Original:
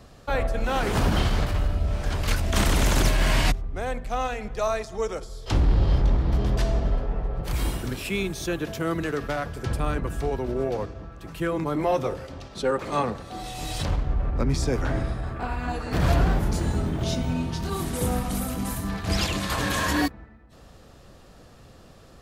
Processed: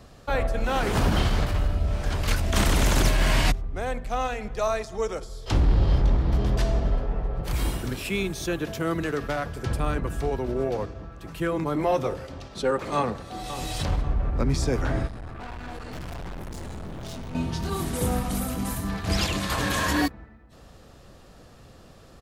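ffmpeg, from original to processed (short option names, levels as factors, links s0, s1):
-filter_complex "[0:a]asplit=2[s0][s1];[s1]afade=t=in:st=12.95:d=0.01,afade=t=out:st=13.47:d=0.01,aecho=0:1:540|1080|1620|2160:0.237137|0.0948549|0.037942|0.0151768[s2];[s0][s2]amix=inputs=2:normalize=0,asettb=1/sr,asplit=3[s3][s4][s5];[s3]atrim=end=15.074[s6];[s4]atrim=start=15.07:end=17.35,asetpts=PTS-STARTPTS,afade=t=in:d=0.004:c=qsin,afade=t=out:st=2.276:d=0.004:c=qsin,aeval=exprs='(tanh(56.2*val(0)+0.6)-tanh(0.6))/56.2':c=same[s7];[s5]atrim=start=17.346[s8];[s6][s7]acrossfade=d=0.004:c1=hsin:c2=qsin[s9];[s9][s8]acrossfade=d=0.004:c1=qsin:c2=hsin"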